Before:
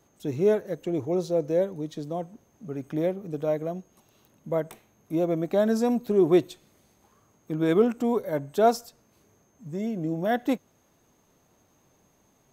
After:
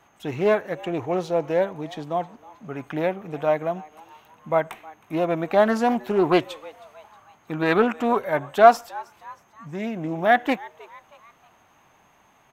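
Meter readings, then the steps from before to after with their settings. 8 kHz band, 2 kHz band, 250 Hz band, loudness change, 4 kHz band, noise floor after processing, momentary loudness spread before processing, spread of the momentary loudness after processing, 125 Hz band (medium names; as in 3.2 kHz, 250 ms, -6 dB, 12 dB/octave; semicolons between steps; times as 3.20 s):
no reading, +12.5 dB, 0.0 dB, +4.0 dB, +6.5 dB, -59 dBFS, 13 LU, 17 LU, 0.0 dB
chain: high-order bell 1.5 kHz +12.5 dB 2.5 oct; frequency-shifting echo 316 ms, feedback 46%, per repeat +150 Hz, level -22 dB; loudspeaker Doppler distortion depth 0.19 ms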